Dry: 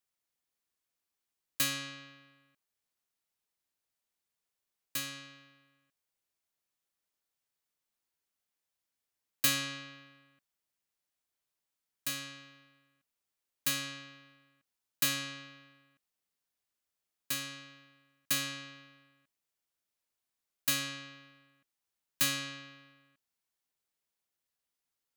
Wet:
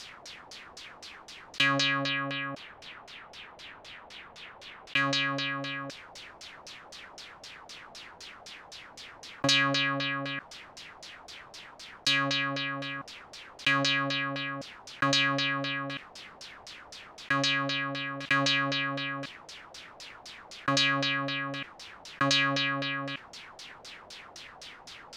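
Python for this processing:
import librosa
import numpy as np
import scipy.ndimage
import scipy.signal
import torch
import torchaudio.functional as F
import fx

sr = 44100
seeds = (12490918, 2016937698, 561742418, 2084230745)

y = fx.high_shelf_res(x, sr, hz=4100.0, db=-6.5, q=1.5, at=(2.09, 4.97))
y = fx.filter_lfo_lowpass(y, sr, shape='saw_down', hz=3.9, low_hz=580.0, high_hz=5800.0, q=3.3)
y = fx.env_flatten(y, sr, amount_pct=70)
y = y * librosa.db_to_amplitude(3.0)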